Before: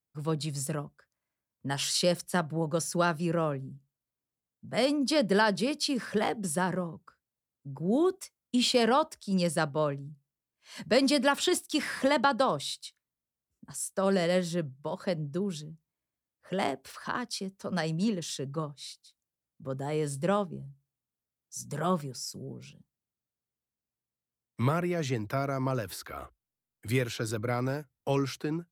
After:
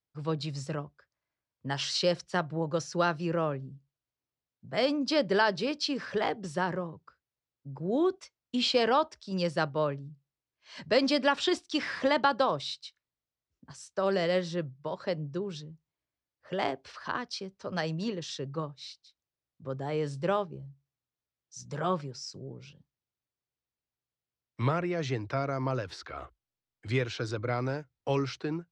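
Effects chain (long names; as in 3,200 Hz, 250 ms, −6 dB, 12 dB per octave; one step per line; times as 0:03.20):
low-pass filter 5,700 Hz 24 dB per octave
parametric band 210 Hz −9 dB 0.38 octaves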